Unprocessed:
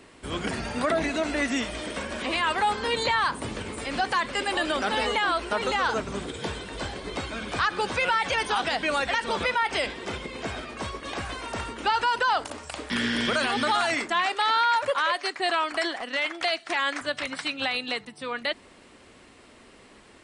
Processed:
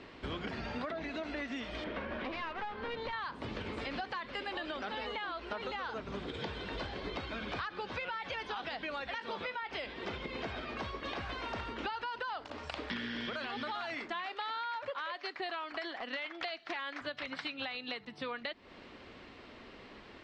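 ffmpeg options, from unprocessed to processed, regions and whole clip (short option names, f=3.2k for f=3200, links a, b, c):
-filter_complex "[0:a]asettb=1/sr,asplit=3[a][b][c];[a]atrim=end=1.844[d];[b]atrim=start=1.84:end=3.13,asetpts=PTS-STARTPTS,afade=t=in:d=0.004:c=qsin,afade=t=out:st=1.286:d=0.004:c=qsin,lowpass=2.3k,aeval=exprs='clip(val(0),-1,0.0299)':c=same[e];[c]atrim=start=3.126[f];[d][e]acrossfade=d=0.004:c1=hsin:c2=qsin[g];[g][f]acrossfade=d=0.004:c1=qsin:c2=hsin,asettb=1/sr,asplit=3[h][i][j];[h]atrim=end=9.154[k];[i]atrim=start=9.15:end=9.63,asetpts=PTS-STARTPTS,afade=t=in:d=0.004:c=qsin,afade=t=out:st=0.476:d=0.004:c=qsin,highpass=110,asplit=2[l][m];[m]adelay=20,volume=-10.5dB[n];[l][n]amix=inputs=2:normalize=0,atrim=end_sample=21168[o];[j]atrim=start=9.626[p];[k][o]acrossfade=d=0.004:c1=hsin:c2=qsin[q];[q][p]acrossfade=d=0.004:c1=qsin:c2=hsin,lowpass=f=4.7k:w=0.5412,lowpass=f=4.7k:w=1.3066,acompressor=threshold=-36dB:ratio=12"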